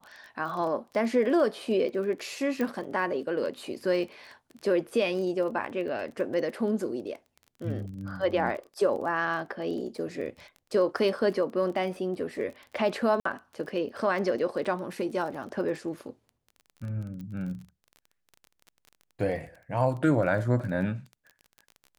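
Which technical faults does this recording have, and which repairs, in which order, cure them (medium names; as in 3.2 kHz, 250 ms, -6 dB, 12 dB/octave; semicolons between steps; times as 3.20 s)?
crackle 25 per s -37 dBFS
2.61 s: pop -18 dBFS
13.20–13.25 s: dropout 54 ms
17.21 s: pop -31 dBFS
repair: de-click; interpolate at 13.20 s, 54 ms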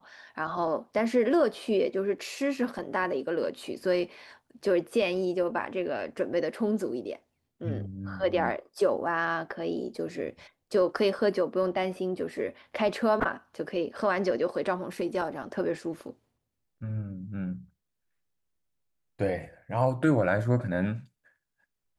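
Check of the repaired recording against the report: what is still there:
nothing left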